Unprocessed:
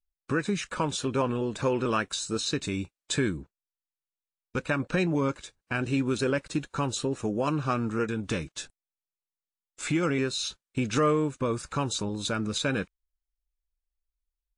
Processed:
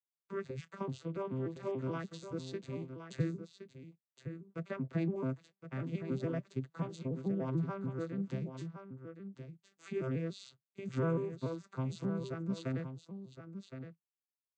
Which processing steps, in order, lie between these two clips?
vocoder with an arpeggio as carrier major triad, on C3, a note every 145 ms
0:06.99–0:08.16: high-shelf EQ 5,900 Hz −10 dB
single-tap delay 1,066 ms −9.5 dB
level −8.5 dB

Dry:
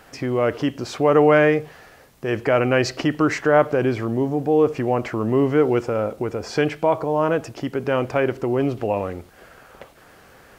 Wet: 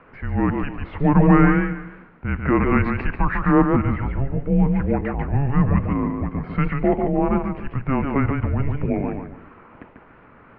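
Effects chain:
single-sideband voice off tune −280 Hz 230–2,700 Hz
feedback echo with a swinging delay time 145 ms, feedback 31%, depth 113 cents, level −5 dB

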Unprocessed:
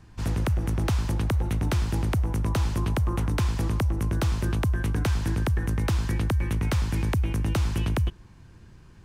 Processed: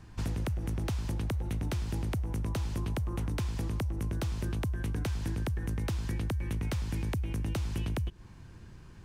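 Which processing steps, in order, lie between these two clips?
dynamic equaliser 1,200 Hz, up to −4 dB, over −45 dBFS, Q 1.1
downward compressor, threshold −30 dBFS, peak gain reduction 9 dB

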